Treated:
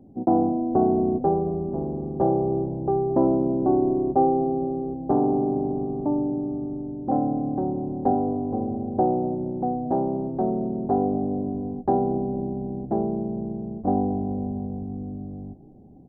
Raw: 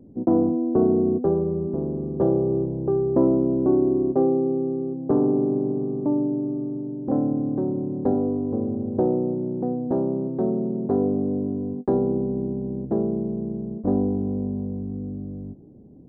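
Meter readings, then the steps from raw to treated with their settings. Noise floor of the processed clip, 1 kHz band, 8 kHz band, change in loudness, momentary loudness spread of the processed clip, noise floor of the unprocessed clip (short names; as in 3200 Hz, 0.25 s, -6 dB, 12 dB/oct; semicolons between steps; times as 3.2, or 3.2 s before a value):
-39 dBFS, +10.0 dB, n/a, -1.0 dB, 9 LU, -38 dBFS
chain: bell 770 Hz +14.5 dB 0.3 oct; notch 470 Hz, Q 12; frequency-shifting echo 0.222 s, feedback 61%, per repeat -110 Hz, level -22 dB; gain -2 dB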